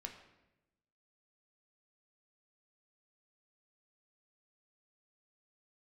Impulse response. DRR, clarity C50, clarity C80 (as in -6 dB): 3.0 dB, 8.5 dB, 10.5 dB